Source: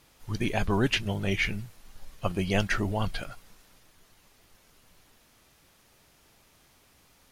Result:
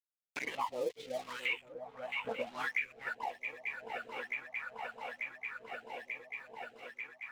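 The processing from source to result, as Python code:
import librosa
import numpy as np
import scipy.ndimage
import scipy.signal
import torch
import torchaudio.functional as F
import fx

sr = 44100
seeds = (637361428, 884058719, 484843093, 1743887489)

p1 = fx.pitch_heads(x, sr, semitones=4.0)
p2 = scipy.signal.sosfilt(scipy.signal.butter(2, 150.0, 'highpass', fs=sr, output='sos'), p1)
p3 = fx.peak_eq(p2, sr, hz=1300.0, db=3.5, octaves=1.0)
p4 = fx.leveller(p3, sr, passes=3)
p5 = fx.dispersion(p4, sr, late='highs', ms=79.0, hz=640.0)
p6 = fx.wah_lfo(p5, sr, hz=0.78, low_hz=440.0, high_hz=2500.0, q=13.0)
p7 = np.sign(p6) * np.maximum(np.abs(p6) - 10.0 ** (-54.0 / 20.0), 0.0)
p8 = p7 + fx.echo_swing(p7, sr, ms=889, ratio=3, feedback_pct=44, wet_db=-16, dry=0)
p9 = fx.filter_lfo_notch(p8, sr, shape='sine', hz=0.36, low_hz=330.0, high_hz=1500.0, q=2.2)
p10 = fx.band_squash(p9, sr, depth_pct=100)
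y = F.gain(torch.from_numpy(p10), 3.0).numpy()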